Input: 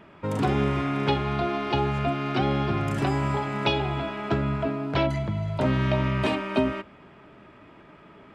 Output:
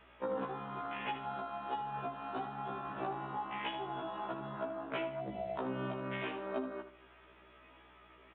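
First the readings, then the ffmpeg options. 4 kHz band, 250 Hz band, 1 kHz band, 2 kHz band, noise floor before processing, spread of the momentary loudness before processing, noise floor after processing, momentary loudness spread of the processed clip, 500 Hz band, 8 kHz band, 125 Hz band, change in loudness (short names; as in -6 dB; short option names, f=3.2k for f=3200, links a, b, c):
-15.0 dB, -17.0 dB, -9.5 dB, -12.5 dB, -51 dBFS, 4 LU, -61 dBFS, 21 LU, -12.0 dB, n/a, -23.5 dB, -14.0 dB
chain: -af "highpass=360,afwtdn=0.0316,highshelf=f=2.2k:g=10.5,acompressor=threshold=-41dB:ratio=12,aeval=exprs='val(0)+0.000158*(sin(2*PI*60*n/s)+sin(2*PI*2*60*n/s)/2+sin(2*PI*3*60*n/s)/3+sin(2*PI*4*60*n/s)/4+sin(2*PI*5*60*n/s)/5)':c=same,aecho=1:1:78|156|234|312:0.299|0.0985|0.0325|0.0107,aresample=8000,aresample=44100,afftfilt=real='re*1.73*eq(mod(b,3),0)':imag='im*1.73*eq(mod(b,3),0)':win_size=2048:overlap=0.75,volume=8dB"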